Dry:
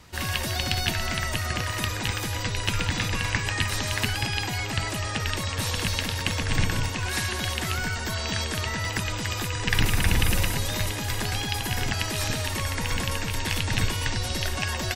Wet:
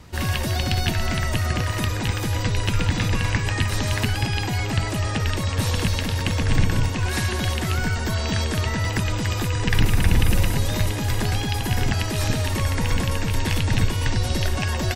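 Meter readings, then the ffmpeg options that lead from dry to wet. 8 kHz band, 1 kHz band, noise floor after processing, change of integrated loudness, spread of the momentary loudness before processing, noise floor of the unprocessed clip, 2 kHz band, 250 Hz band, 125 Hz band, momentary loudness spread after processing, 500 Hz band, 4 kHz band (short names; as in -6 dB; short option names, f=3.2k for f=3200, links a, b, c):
-0.5 dB, +2.0 dB, -26 dBFS, +3.5 dB, 4 LU, -31 dBFS, 0.0 dB, +6.5 dB, +7.0 dB, 3 LU, +4.5 dB, -0.5 dB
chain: -filter_complex "[0:a]tiltshelf=f=710:g=4,asplit=2[a][b];[b]alimiter=limit=-15dB:level=0:latency=1:release=288,volume=0dB[c];[a][c]amix=inputs=2:normalize=0,volume=-2dB"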